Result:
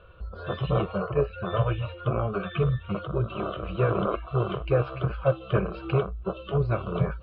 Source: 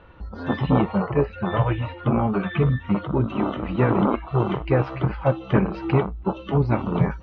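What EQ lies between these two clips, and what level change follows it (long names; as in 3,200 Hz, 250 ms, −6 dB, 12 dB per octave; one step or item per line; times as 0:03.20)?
phaser with its sweep stopped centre 1,300 Hz, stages 8
−1.0 dB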